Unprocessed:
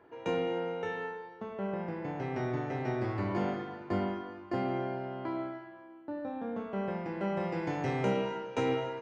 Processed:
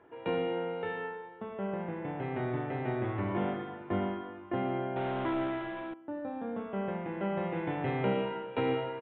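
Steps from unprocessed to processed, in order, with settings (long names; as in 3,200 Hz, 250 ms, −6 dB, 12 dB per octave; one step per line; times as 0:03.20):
0:04.96–0:05.94: power curve on the samples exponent 0.5
downsampling to 8,000 Hz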